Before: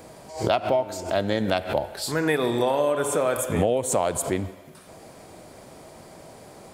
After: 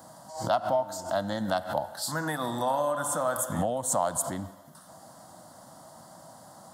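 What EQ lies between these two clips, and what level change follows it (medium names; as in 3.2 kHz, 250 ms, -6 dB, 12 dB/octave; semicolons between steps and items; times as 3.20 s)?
high-pass 150 Hz 12 dB/octave; static phaser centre 1 kHz, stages 4; 0.0 dB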